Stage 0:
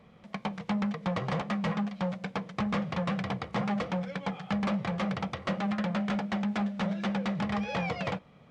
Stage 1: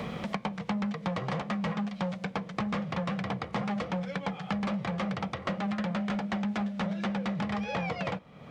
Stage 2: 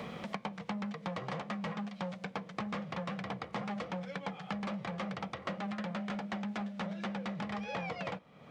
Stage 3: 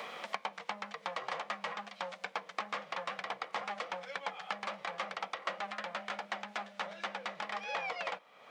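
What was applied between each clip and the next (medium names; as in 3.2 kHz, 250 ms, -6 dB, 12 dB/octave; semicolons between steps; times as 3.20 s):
three bands compressed up and down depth 100%; trim -1.5 dB
bass shelf 120 Hz -9 dB; trim -5 dB
high-pass 690 Hz 12 dB/octave; trim +4 dB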